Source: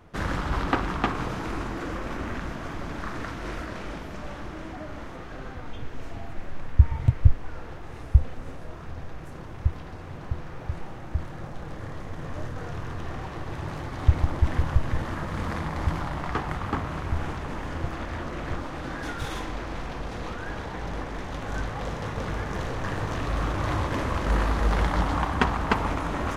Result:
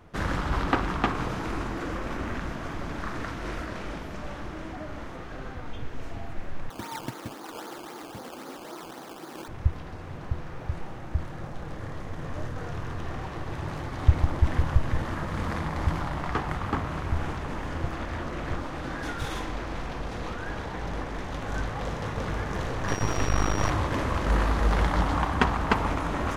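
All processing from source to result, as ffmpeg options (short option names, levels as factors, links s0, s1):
-filter_complex "[0:a]asettb=1/sr,asplit=3[s0][s1][s2];[s0]atrim=end=6.704[s3];[s1]atrim=start=6.7:end=9.48,asetpts=PTS-STARTPTS,afade=t=in:d=0.004:c=qsin,afade=t=out:st=2.776:d=0.004:c=qsin,highpass=f=210:w=0.5412,highpass=f=210:w=1.3066,equalizer=f=330:t=q:w=4:g=7,equalizer=f=860:t=q:w=4:g=7,equalizer=f=1300:t=q:w=4:g=6,lowpass=f=2500:w=0.5412,lowpass=f=2500:w=1.3066,acrusher=samples=16:mix=1:aa=0.000001:lfo=1:lforange=16:lforate=3.8[s4];[s2]atrim=start=9.476[s5];[s3][s4]acrossfade=d=0.004:c1=hsin:c2=qsin[s6];[s6][s5]acrossfade=d=0.004:c1=qsin:c2=hsin,asettb=1/sr,asplit=3[s7][s8][s9];[s7]atrim=end=22.884[s10];[s8]atrim=start=22.88:end=23.7,asetpts=PTS-STARTPTS,afade=t=in:d=0.004:c=qsin,afade=t=out:st=0.816:d=0.004:c=qsin,aeval=exprs='max(val(0),0)':c=same,acontrast=57,aeval=exprs='val(0)+0.01*sin(2*PI*5700*n/s)':c=same[s11];[s9]atrim=start=23.696[s12];[s10][s11]acrossfade=d=0.004:c1=hsin:c2=qsin[s13];[s13][s12]acrossfade=d=0.004:c1=qsin:c2=hsin"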